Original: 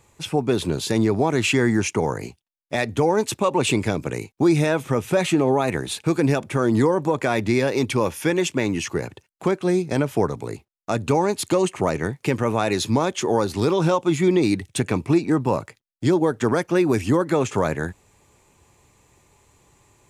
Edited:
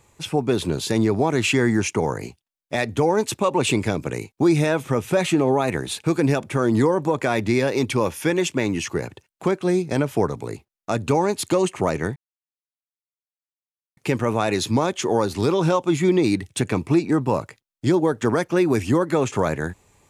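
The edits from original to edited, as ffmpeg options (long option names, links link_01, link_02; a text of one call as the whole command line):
ffmpeg -i in.wav -filter_complex "[0:a]asplit=2[link_01][link_02];[link_01]atrim=end=12.16,asetpts=PTS-STARTPTS,afade=type=out:start_time=12.156:duration=0.004:curve=hsin,apad=pad_dur=1.81[link_03];[link_02]atrim=start=12.16,asetpts=PTS-STARTPTS,afade=type=in:duration=0.004:curve=hsin[link_04];[link_03][link_04]concat=n=2:v=0:a=1" out.wav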